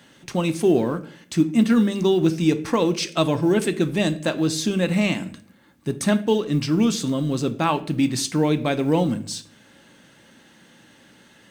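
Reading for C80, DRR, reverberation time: 20.0 dB, 10.0 dB, 0.55 s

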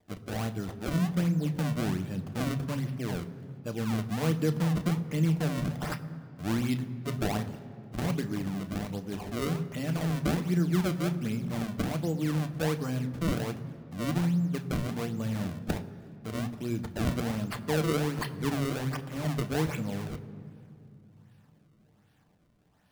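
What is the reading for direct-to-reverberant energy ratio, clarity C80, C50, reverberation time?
7.0 dB, 14.5 dB, 14.0 dB, 2.6 s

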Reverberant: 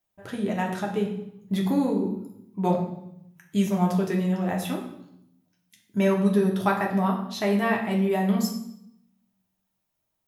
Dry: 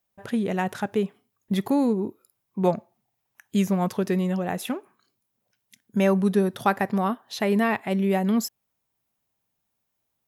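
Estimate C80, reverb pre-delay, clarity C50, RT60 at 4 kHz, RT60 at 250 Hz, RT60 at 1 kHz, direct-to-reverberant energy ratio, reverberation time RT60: 9.5 dB, 3 ms, 7.0 dB, 0.70 s, 1.1 s, 0.75 s, -1.0 dB, 0.75 s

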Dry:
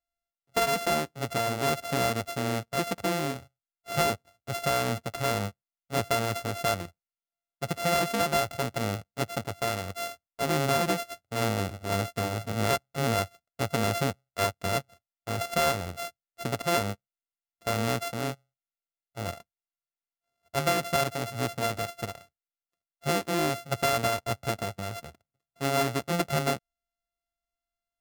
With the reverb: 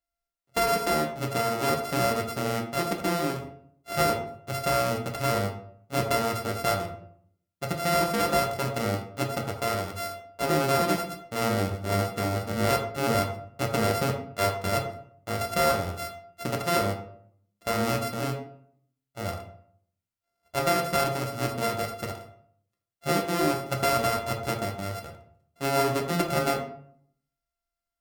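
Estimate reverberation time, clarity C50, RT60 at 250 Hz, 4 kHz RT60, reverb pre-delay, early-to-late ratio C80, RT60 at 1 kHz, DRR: 0.60 s, 8.0 dB, 0.70 s, 0.35 s, 3 ms, 11.0 dB, 0.55 s, 1.5 dB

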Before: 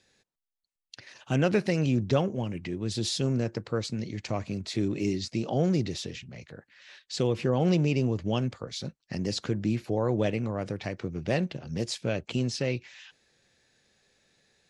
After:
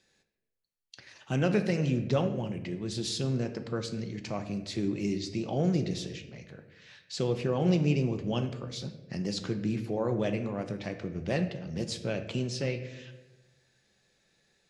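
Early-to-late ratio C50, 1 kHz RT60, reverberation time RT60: 10.5 dB, 0.90 s, 1.1 s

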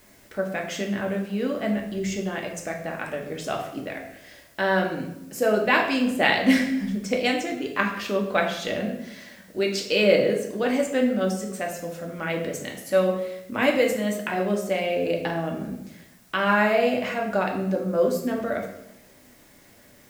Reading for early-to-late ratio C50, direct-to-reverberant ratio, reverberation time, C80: 7.0 dB, 0.5 dB, 0.85 s, 9.5 dB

